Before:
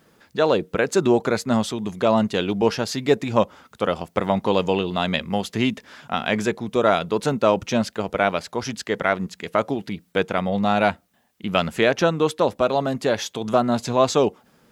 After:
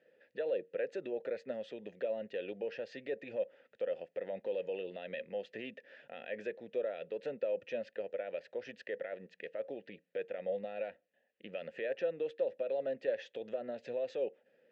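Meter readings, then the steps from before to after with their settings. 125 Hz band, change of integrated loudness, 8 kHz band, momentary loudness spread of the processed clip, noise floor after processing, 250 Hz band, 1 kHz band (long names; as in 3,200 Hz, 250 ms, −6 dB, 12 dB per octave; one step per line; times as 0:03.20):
−31.5 dB, −17.5 dB, below −35 dB, 9 LU, −77 dBFS, −26.0 dB, −29.0 dB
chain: high-pass filter 82 Hz
in parallel at 0 dB: downward compressor, threshold −28 dBFS, peak gain reduction 15.5 dB
on the sum: brickwall limiter −11 dBFS, peak gain reduction 10 dB
formant filter e
high-frequency loss of the air 110 metres
level −5.5 dB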